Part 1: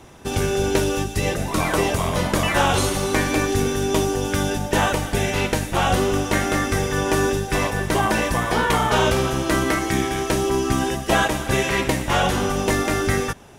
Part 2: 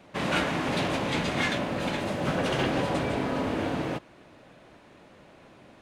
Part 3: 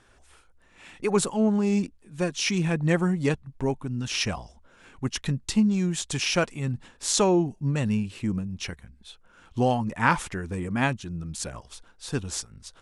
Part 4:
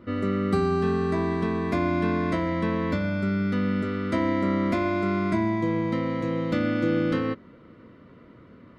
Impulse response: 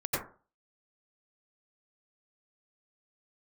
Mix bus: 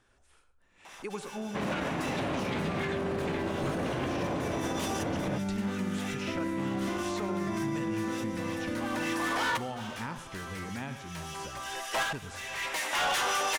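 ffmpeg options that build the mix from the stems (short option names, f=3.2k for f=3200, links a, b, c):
-filter_complex "[0:a]highpass=730,acrossover=split=1400[a][b];[a]aeval=exprs='val(0)*(1-0.5/2+0.5/2*cos(2*PI*5.4*n/s))':c=same[c];[b]aeval=exprs='val(0)*(1-0.5/2-0.5/2*cos(2*PI*5.4*n/s))':c=same[d];[c][d]amix=inputs=2:normalize=0,asplit=2[e][f];[f]highpass=f=720:p=1,volume=22dB,asoftclip=type=tanh:threshold=-10dB[g];[e][g]amix=inputs=2:normalize=0,lowpass=f=6.2k:p=1,volume=-6dB,adelay=850,volume=-7dB[h];[1:a]highshelf=f=3.8k:g=-12,adelay=1400,volume=-1dB[i];[2:a]acrossover=split=790|3400[j][k][l];[j]acompressor=threshold=-28dB:ratio=4[m];[k]acompressor=threshold=-34dB:ratio=4[n];[l]acompressor=threshold=-45dB:ratio=4[o];[m][n][o]amix=inputs=3:normalize=0,volume=-9.5dB,asplit=4[p][q][r][s];[q]volume=-19dB[t];[r]volume=-16dB[u];[3:a]adelay=2150,volume=-12.5dB,asplit=2[v][w];[w]volume=-10dB[x];[s]apad=whole_len=636458[y];[h][y]sidechaincompress=threshold=-55dB:ratio=10:attack=5.9:release=539[z];[4:a]atrim=start_sample=2205[aa];[t][x]amix=inputs=2:normalize=0[ab];[ab][aa]afir=irnorm=-1:irlink=0[ac];[u]aecho=0:1:105:1[ad];[z][i][p][v][ac][ad]amix=inputs=6:normalize=0,alimiter=limit=-23.5dB:level=0:latency=1:release=46"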